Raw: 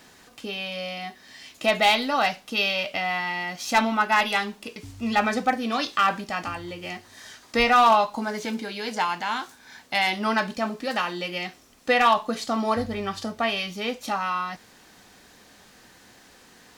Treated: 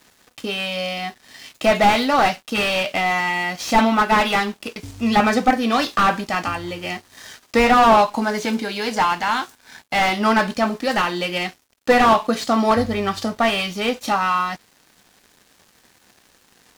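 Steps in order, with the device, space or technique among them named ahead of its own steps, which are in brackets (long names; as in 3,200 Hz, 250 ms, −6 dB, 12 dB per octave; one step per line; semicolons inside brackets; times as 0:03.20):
early transistor amplifier (dead-zone distortion −50.5 dBFS; slew-rate limiting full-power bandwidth 110 Hz)
level +8 dB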